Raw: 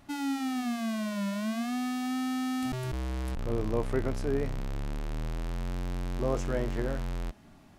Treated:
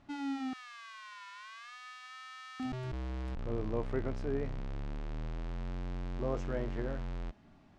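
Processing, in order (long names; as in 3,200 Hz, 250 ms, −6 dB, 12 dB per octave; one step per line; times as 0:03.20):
0:00.53–0:02.60: Chebyshev high-pass filter 1,000 Hz, order 5
bit-depth reduction 12 bits, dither none
high-frequency loss of the air 120 metres
level −5 dB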